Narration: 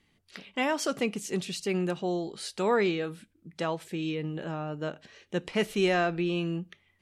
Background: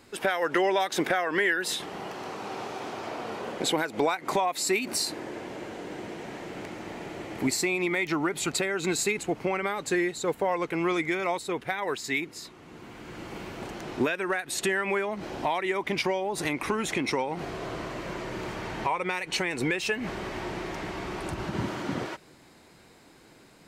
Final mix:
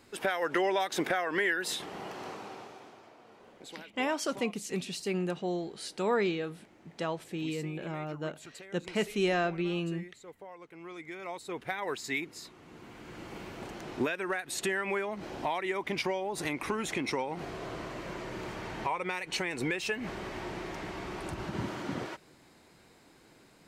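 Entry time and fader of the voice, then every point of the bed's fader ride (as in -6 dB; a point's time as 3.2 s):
3.40 s, -3.0 dB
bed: 2.29 s -4 dB
3.14 s -21 dB
10.75 s -21 dB
11.7 s -4.5 dB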